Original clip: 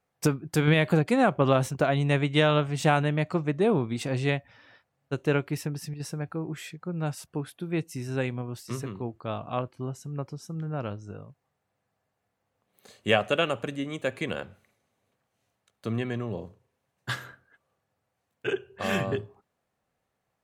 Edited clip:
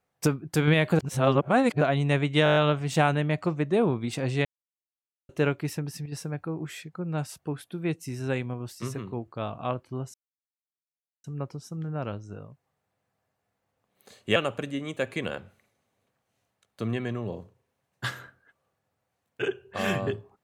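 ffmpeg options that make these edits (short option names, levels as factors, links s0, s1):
-filter_complex "[0:a]asplit=13[s0][s1][s2][s3][s4][s5][s6][s7][s8][s9][s10][s11][s12];[s0]atrim=end=0.992[s13];[s1]atrim=start=0.988:end=1.812,asetpts=PTS-STARTPTS,areverse[s14];[s2]atrim=start=1.808:end=2.462[s15];[s3]atrim=start=2.438:end=2.462[s16];[s4]atrim=start=2.438:end=2.462[s17];[s5]atrim=start=2.438:end=2.462[s18];[s6]atrim=start=2.438:end=2.462[s19];[s7]atrim=start=2.438:end=2.462[s20];[s8]atrim=start=2.438:end=4.33,asetpts=PTS-STARTPTS,afade=t=out:st=1.888:d=0.004:c=hsin[s21];[s9]atrim=start=4.33:end=5.17,asetpts=PTS-STARTPTS,volume=0[s22];[s10]atrim=start=5.17:end=10.02,asetpts=PTS-STARTPTS,afade=t=in:d=0.004:c=hsin,afade=t=out:st=4.846:d=0.004:c=hsin,apad=pad_dur=1.1[s23];[s11]atrim=start=10.02:end=13.142,asetpts=PTS-STARTPTS,afade=t=in:d=0.004:c=hsin[s24];[s12]atrim=start=13.408[s25];[s13][s14]acrossfade=d=0.004:c1=hsin:c2=hsin[s26];[s26][s15]acrossfade=d=0.004:c1=hsin:c2=hsin[s27];[s27][s16]acrossfade=d=0.004:c1=hsin:c2=hsin[s28];[s28][s17]acrossfade=d=0.004:c1=hsin:c2=hsin[s29];[s29][s18]acrossfade=d=0.004:c1=hsin:c2=hsin[s30];[s30][s19]acrossfade=d=0.004:c1=hsin:c2=hsin[s31];[s31][s20]acrossfade=d=0.004:c1=hsin:c2=hsin[s32];[s21][s22][s23][s24]concat=n=4:v=0:a=1[s33];[s32][s33]acrossfade=d=0.004:c1=hsin:c2=hsin[s34];[s34][s25]acrossfade=d=0.004:c1=hsin:c2=hsin"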